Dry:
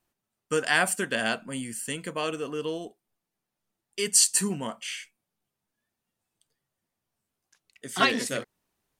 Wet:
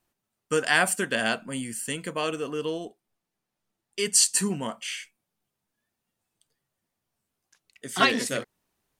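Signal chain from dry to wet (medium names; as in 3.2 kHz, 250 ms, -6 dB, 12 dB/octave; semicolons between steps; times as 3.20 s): 2.70–4.55 s: treble shelf 11 kHz -6 dB; trim +1.5 dB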